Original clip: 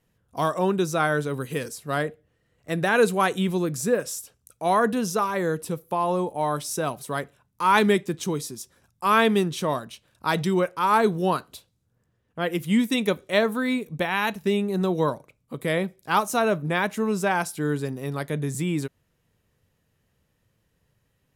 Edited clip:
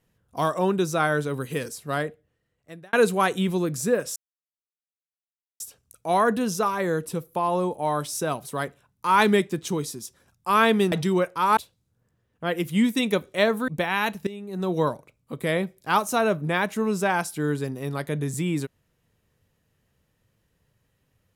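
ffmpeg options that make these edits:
-filter_complex "[0:a]asplit=7[s0][s1][s2][s3][s4][s5][s6];[s0]atrim=end=2.93,asetpts=PTS-STARTPTS,afade=t=out:st=1.85:d=1.08[s7];[s1]atrim=start=2.93:end=4.16,asetpts=PTS-STARTPTS,afade=t=in:d=0.004:c=hsin,afade=t=out:st=1.226:d=0.004:c=hsin,apad=pad_dur=1.44[s8];[s2]atrim=start=4.16:end=9.482,asetpts=PTS-STARTPTS,afade=t=in:d=0.004:c=hsin[s9];[s3]atrim=start=10.328:end=10.982[s10];[s4]atrim=start=11.518:end=13.632[s11];[s5]atrim=start=13.888:end=14.48,asetpts=PTS-STARTPTS,afade=t=out:st=0.588:d=0.004:c=hsin:silence=0.16788[s12];[s6]atrim=start=14.48,asetpts=PTS-STARTPTS,afade=t=in:d=0.47:c=qua:silence=0.16788[s13];[s7][s8][s9]concat=n=3:v=0:a=1[s14];[s14][s10]acrossfade=d=0.004:c1=hsin:c2=hsin[s15];[s15][s11]acrossfade=d=0.004:c1=hsin:c2=hsin[s16];[s12][s13]concat=n=2:v=0:a=1[s17];[s16][s17]acrossfade=d=0.004:c1=hsin:c2=hsin"

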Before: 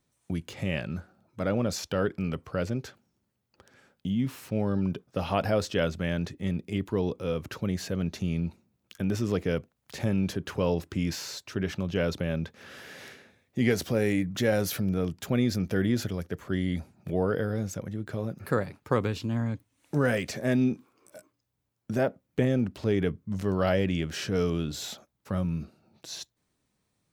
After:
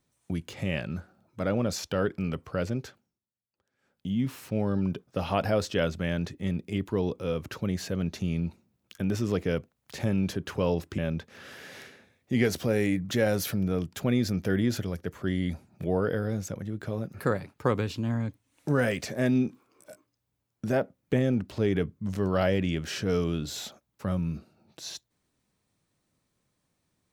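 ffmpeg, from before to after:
-filter_complex "[0:a]asplit=4[s0][s1][s2][s3];[s0]atrim=end=3.2,asetpts=PTS-STARTPTS,afade=t=out:st=2.81:d=0.39:silence=0.0944061[s4];[s1]atrim=start=3.2:end=3.78,asetpts=PTS-STARTPTS,volume=0.0944[s5];[s2]atrim=start=3.78:end=10.982,asetpts=PTS-STARTPTS,afade=t=in:d=0.39:silence=0.0944061[s6];[s3]atrim=start=12.238[s7];[s4][s5][s6]concat=n=3:v=0:a=1[s8];[s8][s7]acrossfade=d=0.004:c1=hsin:c2=hsin"

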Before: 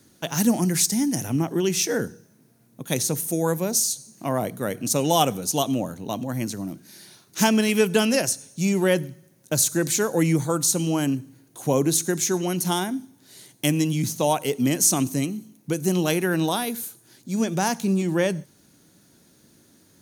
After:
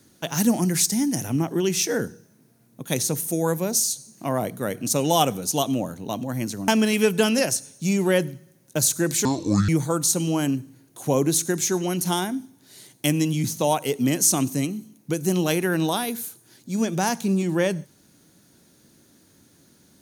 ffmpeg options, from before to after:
-filter_complex "[0:a]asplit=4[s0][s1][s2][s3];[s0]atrim=end=6.682[s4];[s1]atrim=start=7.438:end=10.014[s5];[s2]atrim=start=10.01:end=10.28,asetpts=PTS-STARTPTS,asetrate=27342,aresample=44100[s6];[s3]atrim=start=10.276[s7];[s4][s5]acrossfade=d=0.004:c1=hsin:c2=hsin[s8];[s8][s6]acrossfade=d=0.004:c1=hsin:c2=hsin[s9];[s9][s7]acrossfade=d=0.004:c1=hsin:c2=hsin"

